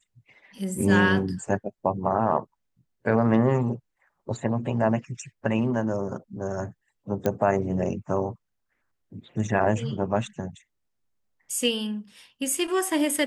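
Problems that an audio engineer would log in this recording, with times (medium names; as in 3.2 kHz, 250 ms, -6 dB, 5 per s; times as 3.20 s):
7.26 s: pop -12 dBFS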